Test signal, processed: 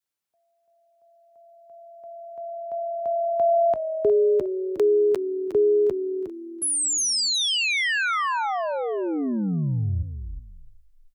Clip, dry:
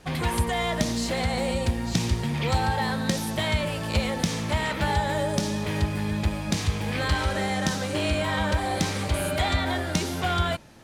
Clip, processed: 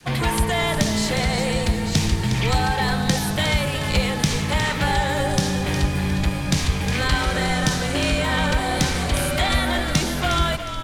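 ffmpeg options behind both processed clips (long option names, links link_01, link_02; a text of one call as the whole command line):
ffmpeg -i in.wav -filter_complex "[0:a]highpass=70,adynamicequalizer=threshold=0.0112:dfrequency=580:dqfactor=0.82:tfrequency=580:tqfactor=0.82:attack=5:release=100:ratio=0.375:range=2:mode=cutabove:tftype=bell,asplit=5[link_01][link_02][link_03][link_04][link_05];[link_02]adelay=360,afreqshift=-40,volume=-9dB[link_06];[link_03]adelay=720,afreqshift=-80,volume=-18.6dB[link_07];[link_04]adelay=1080,afreqshift=-120,volume=-28.3dB[link_08];[link_05]adelay=1440,afreqshift=-160,volume=-37.9dB[link_09];[link_01][link_06][link_07][link_08][link_09]amix=inputs=5:normalize=0,afreqshift=-21,volume=6dB" out.wav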